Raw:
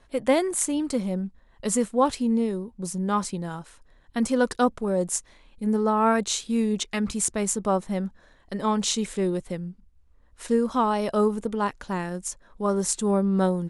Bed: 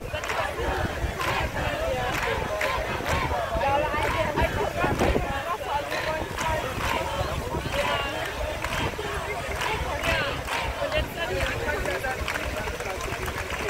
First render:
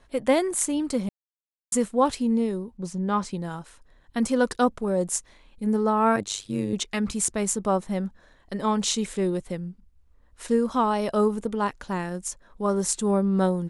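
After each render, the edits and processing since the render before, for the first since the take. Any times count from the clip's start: 1.09–1.72 mute; 2.77–3.31 air absorption 78 m; 6.16–6.73 AM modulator 100 Hz, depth 85%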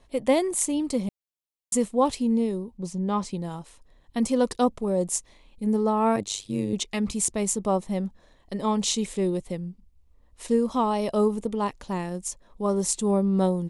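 bell 1500 Hz -11.5 dB 0.46 oct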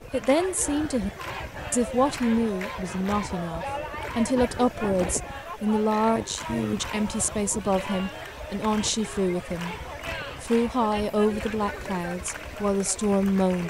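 add bed -8 dB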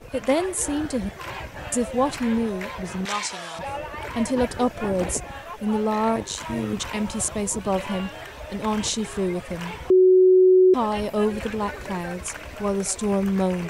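3.05–3.59 weighting filter ITU-R 468; 9.9–10.74 bleep 371 Hz -11 dBFS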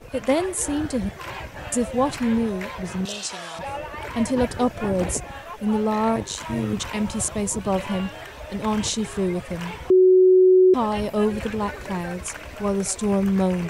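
3.07–3.27 spectral repair 760–2500 Hz before; dynamic EQ 110 Hz, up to +5 dB, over -36 dBFS, Q 0.93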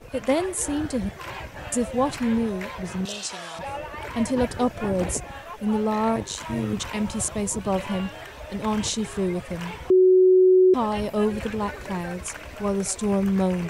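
gain -1.5 dB

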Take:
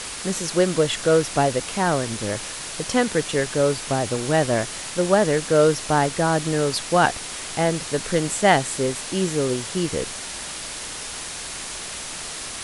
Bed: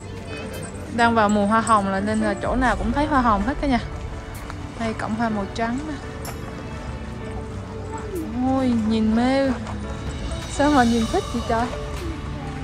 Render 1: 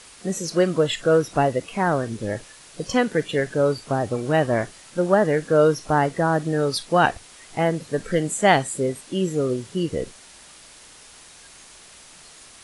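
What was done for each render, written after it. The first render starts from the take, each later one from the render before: noise print and reduce 14 dB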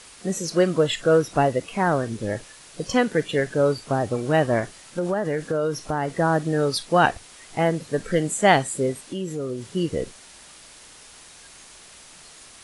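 4.59–6.19 compressor, threshold -20 dBFS; 9.02–9.62 compressor 2.5:1, threshold -28 dBFS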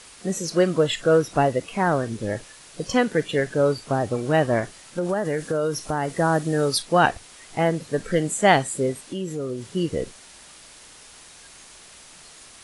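5.09–6.82 high shelf 7100 Hz +8.5 dB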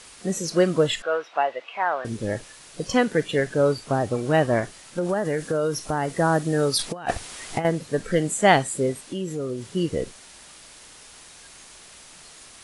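1.02–2.05 Chebyshev band-pass 730–3000 Hz; 6.79–7.65 negative-ratio compressor -25 dBFS, ratio -0.5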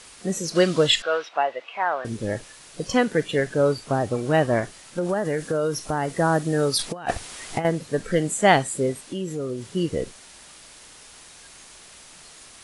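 0.55–1.29 bell 4200 Hz +10 dB 1.8 oct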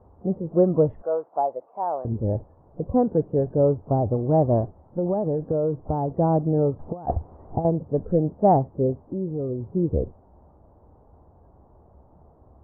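steep low-pass 900 Hz 36 dB/oct; bell 76 Hz +15 dB 1 oct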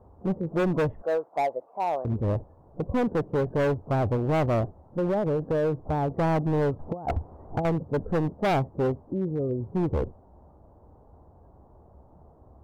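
overloaded stage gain 21 dB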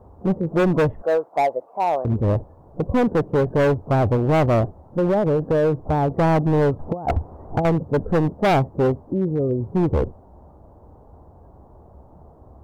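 gain +6.5 dB

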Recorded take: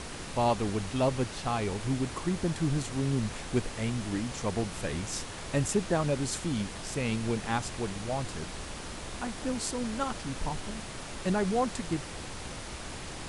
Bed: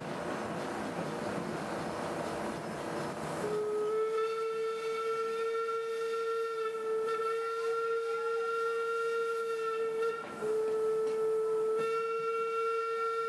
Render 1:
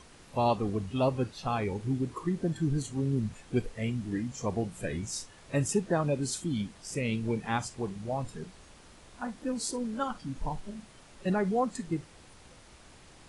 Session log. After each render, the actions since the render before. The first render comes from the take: noise print and reduce 14 dB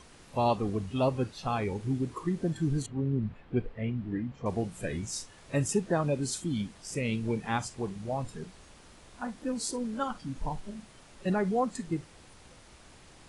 2.86–4.46 air absorption 400 m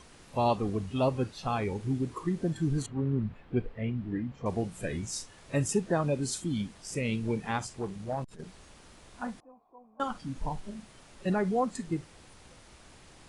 2.77–3.23 dynamic EQ 1200 Hz, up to +6 dB, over -53 dBFS, Q 1.1; 7.51–8.46 core saturation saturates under 550 Hz; 9.4–10 vocal tract filter a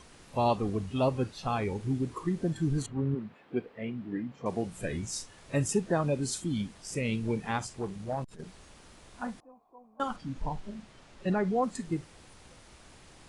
3.14–4.66 HPF 300 Hz -> 140 Hz; 10.16–11.63 air absorption 59 m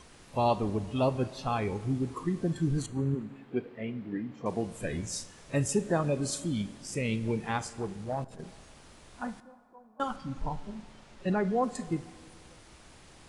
plate-style reverb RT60 1.9 s, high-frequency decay 0.65×, DRR 14.5 dB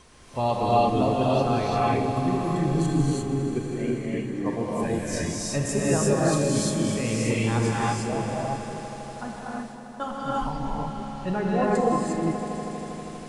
swelling echo 80 ms, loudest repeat 5, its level -16 dB; non-linear reverb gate 0.38 s rising, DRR -5.5 dB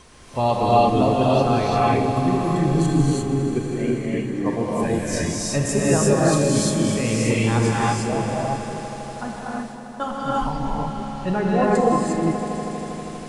gain +4.5 dB

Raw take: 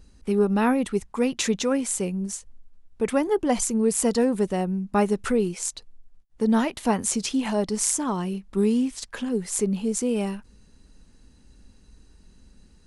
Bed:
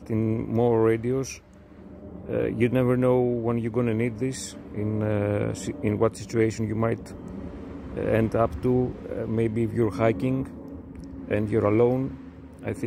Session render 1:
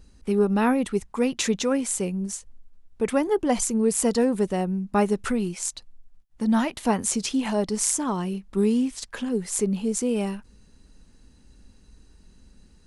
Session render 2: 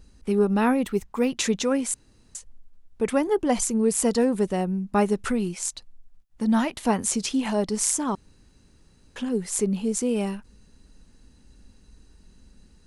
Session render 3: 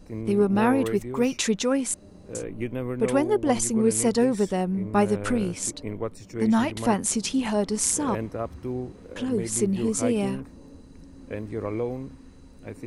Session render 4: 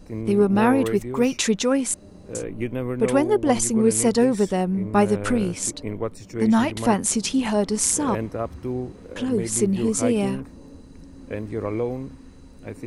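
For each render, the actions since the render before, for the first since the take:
5.3–6.72 bell 440 Hz -14 dB 0.25 oct
0.84–1.3 decimation joined by straight lines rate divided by 2×; 1.94–2.35 room tone; 8.15–9.16 room tone
add bed -8.5 dB
gain +3 dB; limiter -3 dBFS, peak gain reduction 0.5 dB

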